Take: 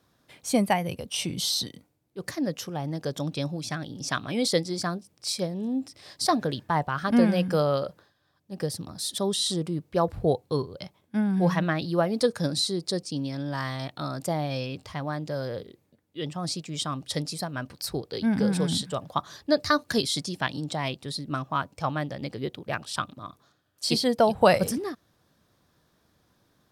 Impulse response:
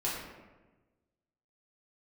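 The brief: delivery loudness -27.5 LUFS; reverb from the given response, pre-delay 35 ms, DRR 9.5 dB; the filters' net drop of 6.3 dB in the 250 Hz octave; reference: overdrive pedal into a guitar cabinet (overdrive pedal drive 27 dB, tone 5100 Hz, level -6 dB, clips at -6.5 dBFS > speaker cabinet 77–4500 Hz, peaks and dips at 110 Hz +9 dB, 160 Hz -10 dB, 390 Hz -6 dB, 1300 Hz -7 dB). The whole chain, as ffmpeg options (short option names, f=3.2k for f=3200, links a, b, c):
-filter_complex "[0:a]equalizer=f=250:t=o:g=-5,asplit=2[a][b];[1:a]atrim=start_sample=2205,adelay=35[c];[b][c]afir=irnorm=-1:irlink=0,volume=-15.5dB[d];[a][d]amix=inputs=2:normalize=0,asplit=2[e][f];[f]highpass=f=720:p=1,volume=27dB,asoftclip=type=tanh:threshold=-6.5dB[g];[e][g]amix=inputs=2:normalize=0,lowpass=f=5.1k:p=1,volume=-6dB,highpass=77,equalizer=f=110:t=q:w=4:g=9,equalizer=f=160:t=q:w=4:g=-10,equalizer=f=390:t=q:w=4:g=-6,equalizer=f=1.3k:t=q:w=4:g=-7,lowpass=f=4.5k:w=0.5412,lowpass=f=4.5k:w=1.3066,volume=-7.5dB"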